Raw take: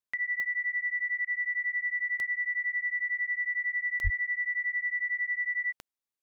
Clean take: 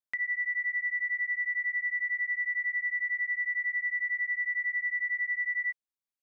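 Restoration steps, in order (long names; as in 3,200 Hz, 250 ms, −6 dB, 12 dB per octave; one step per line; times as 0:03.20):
click removal
0:04.03–0:04.15: high-pass filter 140 Hz 24 dB per octave
repair the gap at 0:01.25, 15 ms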